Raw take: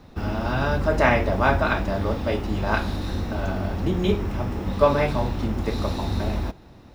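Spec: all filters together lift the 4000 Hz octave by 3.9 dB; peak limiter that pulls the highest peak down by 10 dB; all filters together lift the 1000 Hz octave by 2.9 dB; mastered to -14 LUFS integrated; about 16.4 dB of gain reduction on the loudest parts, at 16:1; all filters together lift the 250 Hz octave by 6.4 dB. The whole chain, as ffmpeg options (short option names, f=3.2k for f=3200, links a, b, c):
-af "equalizer=f=250:t=o:g=8,equalizer=f=1k:t=o:g=3,equalizer=f=4k:t=o:g=4.5,acompressor=threshold=-26dB:ratio=16,volume=20.5dB,alimiter=limit=-5dB:level=0:latency=1"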